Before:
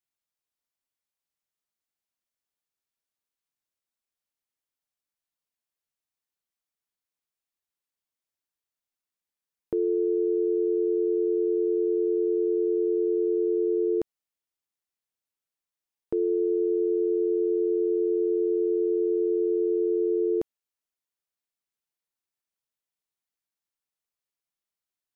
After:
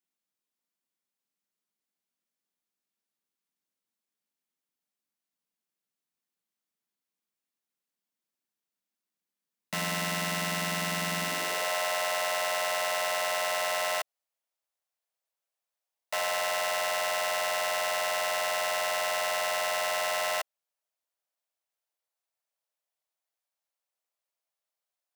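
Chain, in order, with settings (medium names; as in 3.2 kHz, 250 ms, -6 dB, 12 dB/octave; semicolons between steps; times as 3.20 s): integer overflow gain 26 dB; high-pass sweep 200 Hz -> 610 Hz, 11.21–11.72 s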